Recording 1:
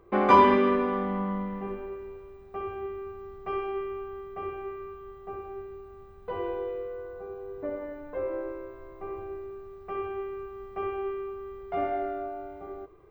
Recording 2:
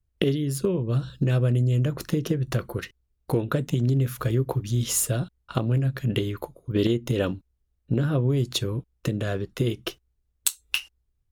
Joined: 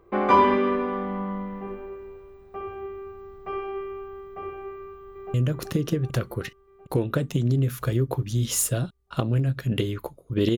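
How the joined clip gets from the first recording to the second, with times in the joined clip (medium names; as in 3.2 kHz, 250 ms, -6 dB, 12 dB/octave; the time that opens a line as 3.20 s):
recording 1
4.77–5.34 s: echo throw 380 ms, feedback 65%, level -4 dB
5.34 s: go over to recording 2 from 1.72 s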